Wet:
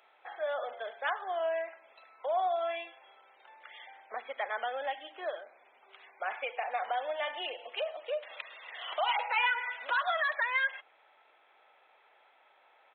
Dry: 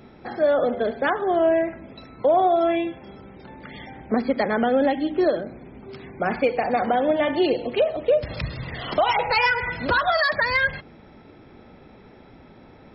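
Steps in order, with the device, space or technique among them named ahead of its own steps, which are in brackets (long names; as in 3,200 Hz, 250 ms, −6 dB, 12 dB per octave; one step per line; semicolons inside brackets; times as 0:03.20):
musical greeting card (downsampling to 8,000 Hz; high-pass filter 690 Hz 24 dB per octave; parametric band 2,900 Hz +4.5 dB 0.35 octaves)
level −8.5 dB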